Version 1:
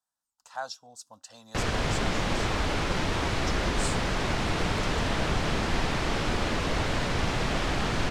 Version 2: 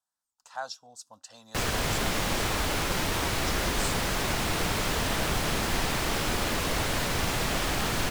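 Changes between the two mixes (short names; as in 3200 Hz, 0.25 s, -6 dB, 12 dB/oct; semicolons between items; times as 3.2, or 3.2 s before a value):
background: remove air absorption 86 m; master: add low shelf 500 Hz -2.5 dB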